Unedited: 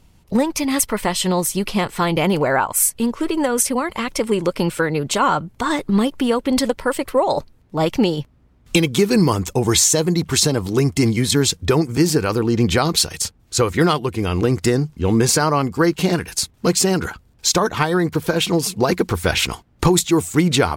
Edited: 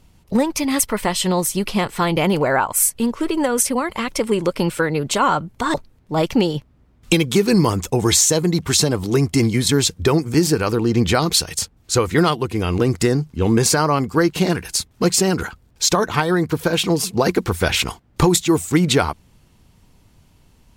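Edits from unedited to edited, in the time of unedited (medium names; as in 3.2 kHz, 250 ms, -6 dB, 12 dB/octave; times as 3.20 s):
5.74–7.37 s: delete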